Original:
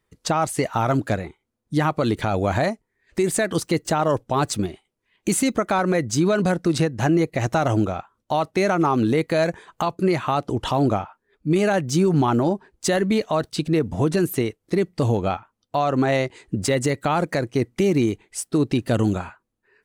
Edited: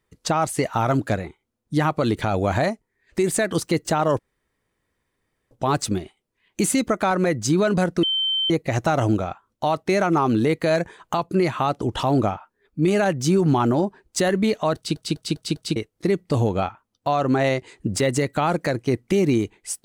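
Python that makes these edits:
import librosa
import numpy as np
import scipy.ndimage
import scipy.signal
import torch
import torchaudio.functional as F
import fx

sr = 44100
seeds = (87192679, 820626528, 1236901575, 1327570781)

y = fx.edit(x, sr, fx.insert_room_tone(at_s=4.19, length_s=1.32),
    fx.bleep(start_s=6.71, length_s=0.47, hz=3100.0, db=-19.5),
    fx.stutter_over(start_s=13.44, slice_s=0.2, count=5), tone=tone)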